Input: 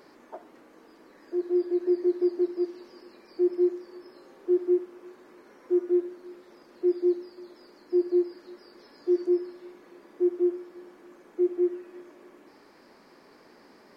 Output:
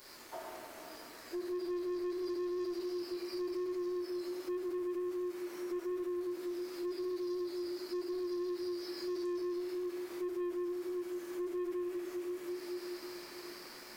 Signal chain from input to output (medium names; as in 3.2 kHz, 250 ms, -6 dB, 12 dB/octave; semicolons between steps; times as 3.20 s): differentiator; reverberation RT60 3.5 s, pre-delay 5 ms, DRR -6 dB; waveshaping leveller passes 3; bass shelf 280 Hz +12 dB; compression 2:1, threshold -40 dBFS, peak gain reduction 6 dB; trim +1 dB